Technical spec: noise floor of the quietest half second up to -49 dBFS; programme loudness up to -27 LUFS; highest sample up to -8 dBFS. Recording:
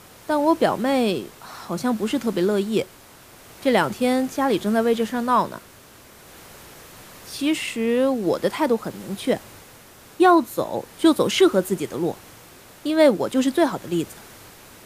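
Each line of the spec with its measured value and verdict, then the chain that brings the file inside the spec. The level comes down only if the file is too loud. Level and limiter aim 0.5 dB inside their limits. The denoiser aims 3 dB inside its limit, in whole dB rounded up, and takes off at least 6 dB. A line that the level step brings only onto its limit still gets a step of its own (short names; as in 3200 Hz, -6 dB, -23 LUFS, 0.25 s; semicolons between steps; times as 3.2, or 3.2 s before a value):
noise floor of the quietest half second -48 dBFS: fail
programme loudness -21.5 LUFS: fail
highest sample -4.5 dBFS: fail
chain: gain -6 dB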